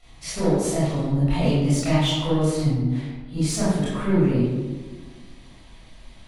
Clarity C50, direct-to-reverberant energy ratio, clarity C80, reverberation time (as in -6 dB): -2.0 dB, -11.0 dB, 1.0 dB, 1.4 s